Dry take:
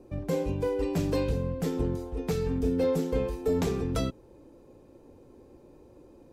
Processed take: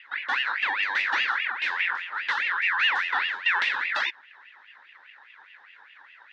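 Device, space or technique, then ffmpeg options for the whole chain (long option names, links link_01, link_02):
voice changer toy: -af "aeval=exprs='val(0)*sin(2*PI*1800*n/s+1800*0.3/4.9*sin(2*PI*4.9*n/s))':channel_layout=same,highpass=410,equalizer=frequency=450:width_type=q:width=4:gain=-4,equalizer=frequency=700:width_type=q:width=4:gain=-8,equalizer=frequency=1200:width_type=q:width=4:gain=-8,equalizer=frequency=2300:width_type=q:width=4:gain=-7,equalizer=frequency=3600:width_type=q:width=4:gain=9,lowpass=frequency=4600:width=0.5412,lowpass=frequency=4600:width=1.3066,volume=8dB"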